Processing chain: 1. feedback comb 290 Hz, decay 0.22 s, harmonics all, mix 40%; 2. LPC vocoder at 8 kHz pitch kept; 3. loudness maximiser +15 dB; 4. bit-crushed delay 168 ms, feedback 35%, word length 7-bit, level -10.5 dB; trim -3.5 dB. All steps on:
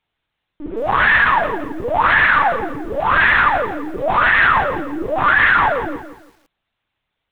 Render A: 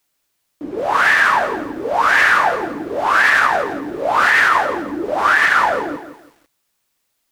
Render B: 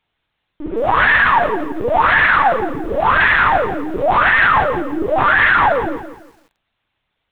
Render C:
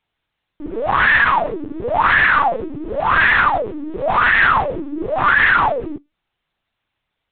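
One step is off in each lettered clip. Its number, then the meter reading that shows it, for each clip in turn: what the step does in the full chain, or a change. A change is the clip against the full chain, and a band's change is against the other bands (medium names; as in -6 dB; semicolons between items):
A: 2, 125 Hz band -9.0 dB; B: 1, 500 Hz band +1.5 dB; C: 4, crest factor change -1.5 dB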